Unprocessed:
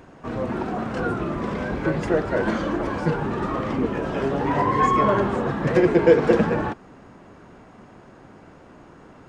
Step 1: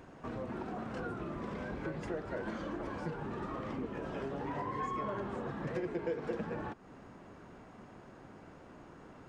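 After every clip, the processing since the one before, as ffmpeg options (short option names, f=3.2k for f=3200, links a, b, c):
-af "acompressor=threshold=-34dB:ratio=2.5,volume=-6.5dB"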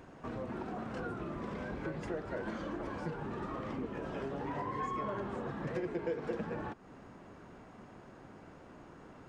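-af anull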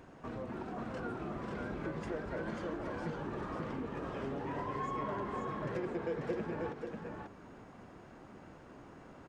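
-af "aecho=1:1:540:0.631,volume=-1.5dB"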